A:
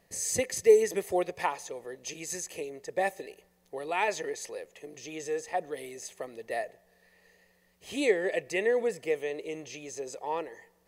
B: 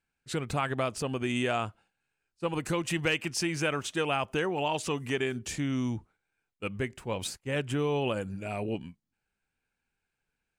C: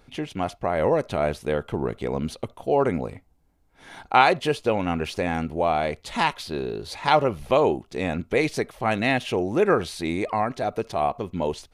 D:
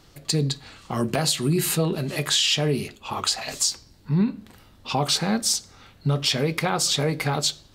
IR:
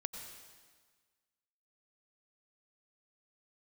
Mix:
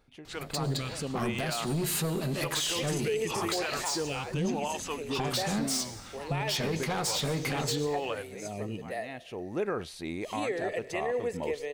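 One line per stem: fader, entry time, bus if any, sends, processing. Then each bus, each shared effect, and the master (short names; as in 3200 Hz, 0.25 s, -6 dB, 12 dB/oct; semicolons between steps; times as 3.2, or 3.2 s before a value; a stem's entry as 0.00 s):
-6.0 dB, 2.40 s, send -6.5 dB, dry
-0.5 dB, 0.00 s, no send, photocell phaser 0.89 Hz
-9.5 dB, 0.00 s, no send, auto duck -15 dB, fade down 0.35 s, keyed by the second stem
-2.0 dB, 0.25 s, send -6 dB, compressor, threshold -23 dBFS, peak gain reduction 6.5 dB; soft clip -27 dBFS, distortion -10 dB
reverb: on, RT60 1.5 s, pre-delay 83 ms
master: limiter -22 dBFS, peak gain reduction 11.5 dB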